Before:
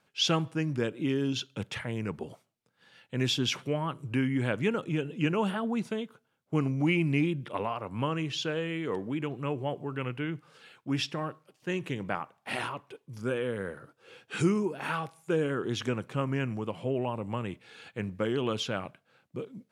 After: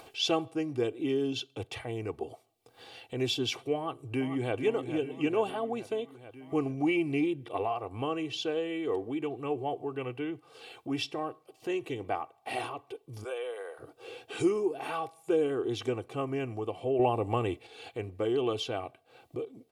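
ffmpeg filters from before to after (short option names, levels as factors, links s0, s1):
-filter_complex "[0:a]asplit=2[s0][s1];[s1]afade=t=in:st=3.76:d=0.01,afade=t=out:st=4.54:d=0.01,aecho=0:1:440|880|1320|1760|2200|2640|3080:0.334965|0.200979|0.120588|0.0723525|0.0434115|0.0260469|0.0156281[s2];[s0][s2]amix=inputs=2:normalize=0,asplit=3[s3][s4][s5];[s3]afade=t=out:st=13.23:d=0.02[s6];[s4]highpass=f=540:w=0.5412,highpass=f=540:w=1.3066,afade=t=in:st=13.23:d=0.02,afade=t=out:st=13.78:d=0.02[s7];[s5]afade=t=in:st=13.78:d=0.02[s8];[s6][s7][s8]amix=inputs=3:normalize=0,asettb=1/sr,asplit=3[s9][s10][s11];[s9]atrim=end=16.994[s12];[s10]atrim=start=16.99:end=17.67,asetpts=PTS-STARTPTS,afade=t=in:d=0.004:c=qsin,afade=t=out:st=0.676:d=0.004:c=qsin,acontrast=71[s13];[s11]atrim=start=17.666[s14];[s12][s13]acrossfade=d=0.004:c1=hsin:c2=qsin[s15];[s15][s14]acrossfade=d=0.004:c1=qsin:c2=hsin,aecho=1:1:2.6:0.72,acompressor=mode=upward:threshold=0.0224:ratio=2.5,equalizer=f=160:t=o:w=0.67:g=-6,equalizer=f=630:t=o:w=0.67:g=7,equalizer=f=1600:t=o:w=0.67:g=-10,equalizer=f=6300:t=o:w=0.67:g=-4,volume=0.75"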